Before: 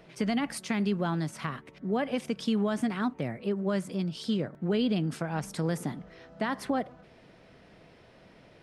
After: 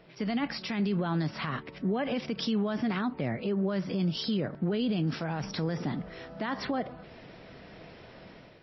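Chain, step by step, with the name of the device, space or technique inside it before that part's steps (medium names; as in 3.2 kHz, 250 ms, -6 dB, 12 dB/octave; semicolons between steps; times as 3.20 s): low-bitrate web radio (level rider gain up to 9 dB; peak limiter -19.5 dBFS, peak gain reduction 11.5 dB; trim -2 dB; MP3 24 kbps 16 kHz)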